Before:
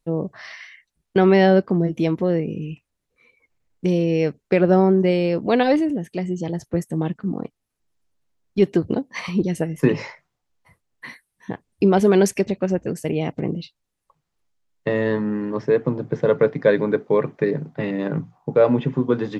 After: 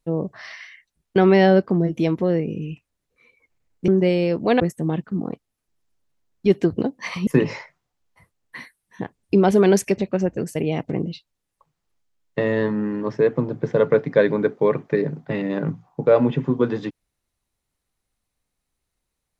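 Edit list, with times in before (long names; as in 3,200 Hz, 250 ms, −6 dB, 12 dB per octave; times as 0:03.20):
0:03.88–0:04.90: remove
0:05.62–0:06.72: remove
0:09.39–0:09.76: remove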